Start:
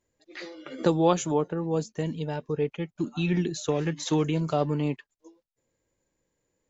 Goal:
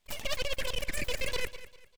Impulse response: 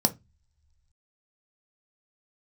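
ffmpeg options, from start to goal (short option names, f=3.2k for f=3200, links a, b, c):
-filter_complex "[0:a]acontrast=39,highpass=f=250:w=0.5412,highpass=f=250:w=1.3066,areverse,acompressor=threshold=-29dB:ratio=6,areverse,lowpass=3.3k,asetrate=149940,aresample=44100,aeval=exprs='abs(val(0))':c=same,asplit=2[a][b];[b]aecho=0:1:198|396|594:0.178|0.0569|0.0182[c];[a][c]amix=inputs=2:normalize=0,volume=2dB"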